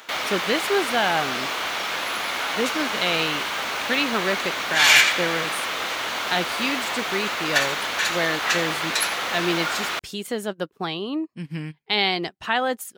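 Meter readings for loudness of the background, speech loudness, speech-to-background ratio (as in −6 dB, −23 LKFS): −23.0 LKFS, −26.5 LKFS, −3.5 dB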